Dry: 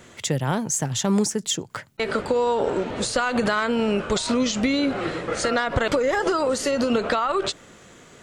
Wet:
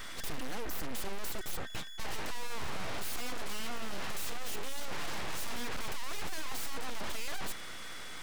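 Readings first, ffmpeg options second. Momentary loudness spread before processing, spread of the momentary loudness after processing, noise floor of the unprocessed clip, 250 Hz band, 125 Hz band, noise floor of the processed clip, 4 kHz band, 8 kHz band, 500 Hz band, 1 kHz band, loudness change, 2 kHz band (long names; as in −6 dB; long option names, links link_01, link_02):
5 LU, 3 LU, −49 dBFS, −23.0 dB, −18.0 dB, −41 dBFS, −11.5 dB, −14.0 dB, −23.0 dB, −16.0 dB, −16.5 dB, −13.0 dB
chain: -af "aeval=exprs='val(0)+0.00631*sin(2*PI*1700*n/s)':channel_layout=same,aeval=exprs='abs(val(0))':channel_layout=same,aeval=exprs='(tanh(35.5*val(0)+0.4)-tanh(0.4))/35.5':channel_layout=same,volume=6dB"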